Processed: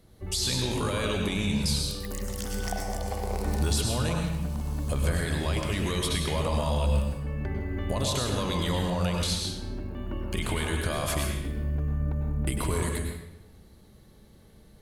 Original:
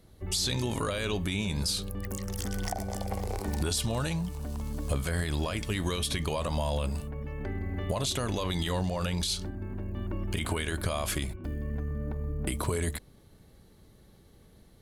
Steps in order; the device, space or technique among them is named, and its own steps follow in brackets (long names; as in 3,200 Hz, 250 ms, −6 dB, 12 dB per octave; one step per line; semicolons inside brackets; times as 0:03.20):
bathroom (convolution reverb RT60 0.95 s, pre-delay 94 ms, DRR 1 dB)